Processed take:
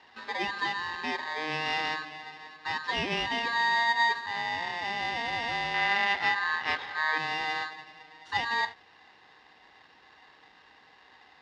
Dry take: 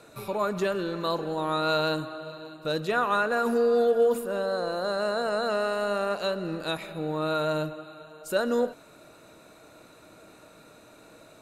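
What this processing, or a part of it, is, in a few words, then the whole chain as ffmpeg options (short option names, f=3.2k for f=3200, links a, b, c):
ring modulator pedal into a guitar cabinet: -filter_complex "[0:a]aeval=exprs='val(0)*sgn(sin(2*PI*1400*n/s))':c=same,highpass=110,equalizer=f=130:t=q:w=4:g=-7,equalizer=f=190:t=q:w=4:g=-5,equalizer=f=660:t=q:w=4:g=-3,equalizer=f=1.2k:t=q:w=4:g=-5,equalizer=f=2.4k:t=q:w=4:g=-7,lowpass=f=4.1k:w=0.5412,lowpass=f=4.1k:w=1.3066,asettb=1/sr,asplit=3[a][b][c];[a]atrim=end=5.744[d];[b]atrim=start=5.74:end=7.18,asetpts=PTS-STARTPTS,afade=t=in:d=0.004:c=qsin,afade=t=out:st=1.436:d=0.004:c=qsin,equalizer=f=1.6k:t=o:w=2:g=8[e];[c]atrim=start=7.176[f];[d][e]acrossfade=d=0.004:c1=hsin:c2=qsin[g];[g][f]acrossfade=d=0.004:c1=qsin:c2=hsin,volume=-1.5dB"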